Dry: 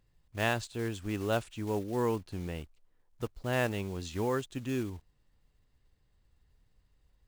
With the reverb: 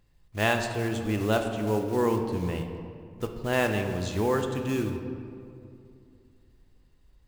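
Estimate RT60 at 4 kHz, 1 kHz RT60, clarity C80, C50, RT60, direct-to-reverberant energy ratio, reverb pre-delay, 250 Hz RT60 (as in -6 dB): 1.3 s, 2.3 s, 7.5 dB, 6.0 dB, 2.5 s, 4.0 dB, 5 ms, 2.9 s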